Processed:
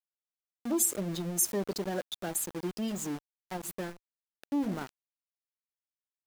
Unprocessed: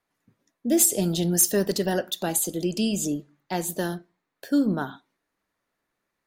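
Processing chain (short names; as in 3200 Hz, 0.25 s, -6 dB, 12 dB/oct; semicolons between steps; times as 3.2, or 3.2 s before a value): spectral gate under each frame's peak -20 dB strong; sample gate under -29.5 dBFS; core saturation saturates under 620 Hz; gain -7.5 dB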